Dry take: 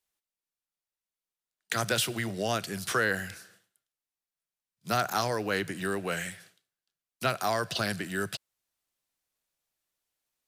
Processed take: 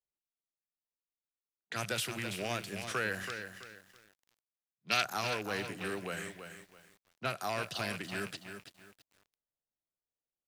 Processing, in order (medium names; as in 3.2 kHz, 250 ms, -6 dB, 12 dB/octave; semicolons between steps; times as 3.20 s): rattle on loud lows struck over -35 dBFS, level -22 dBFS; level-controlled noise filter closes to 680 Hz, open at -28.5 dBFS; 3.23–5.05 s: frequency weighting D; bit-crushed delay 330 ms, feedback 35%, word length 8-bit, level -8 dB; trim -7.5 dB